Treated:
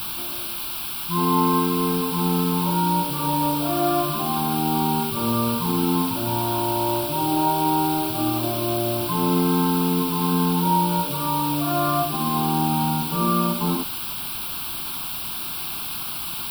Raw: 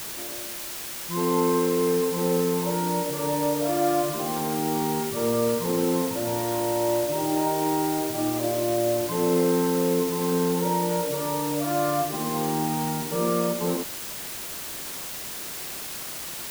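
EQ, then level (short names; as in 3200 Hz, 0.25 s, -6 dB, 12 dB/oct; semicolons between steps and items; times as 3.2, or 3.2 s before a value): fixed phaser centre 1900 Hz, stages 6; +7.5 dB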